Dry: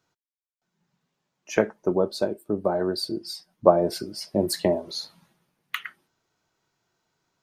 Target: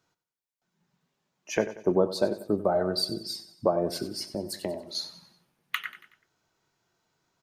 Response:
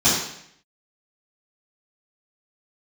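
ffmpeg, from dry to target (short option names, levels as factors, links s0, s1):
-filter_complex "[0:a]asettb=1/sr,asplit=3[s0][s1][s2];[s0]atrim=end=1.554[s3];[s1]atrim=start=1.55:end=1.95,asetpts=PTS-STARTPTS,afade=t=in:d=0.004:c=qsin,afade=t=out:st=0.396:d=0.004:c=qsin,bandreject=f=1300:w=7.4[s4];[s2]atrim=start=1.946[s5];[s3][s4]acrossfade=d=0.004:c1=hsin:c2=qsin[s6];[s6][s5]acrossfade=d=0.004:c1=qsin:c2=hsin,asettb=1/sr,asplit=3[s7][s8][s9];[s7]atrim=end=2.684[s10];[s8]atrim=start=2.68:end=3.19,asetpts=PTS-STARTPTS,afade=t=in:d=0.004:c=qsin,afade=t=out:st=0.506:d=0.004:c=qsin,aecho=1:1:1.5:0.5,atrim=end_sample=22491[s11];[s9]atrim=start=3.186[s12];[s10][s11]acrossfade=d=0.004:c1=hsin:c2=qsin[s13];[s13][s12]acrossfade=d=0.004:c1=qsin:c2=hsin,asettb=1/sr,asplit=3[s14][s15][s16];[s14]atrim=end=4.334[s17];[s15]atrim=start=4.33:end=4.95,asetpts=PTS-STARTPTS,afade=t=in:d=0.004:c=qsin,afade=t=out:st=0.616:d=0.004:c=qsin,acompressor=threshold=0.0126:ratio=2[s18];[s16]atrim=start=4.946[s19];[s17][s18]acrossfade=d=0.004:c1=hsin:c2=qsin[s20];[s20][s19]acrossfade=d=0.004:c1=qsin:c2=hsin,alimiter=limit=0.266:level=0:latency=1:release=373,aecho=1:1:93|186|279|372:0.2|0.0898|0.0404|0.0182"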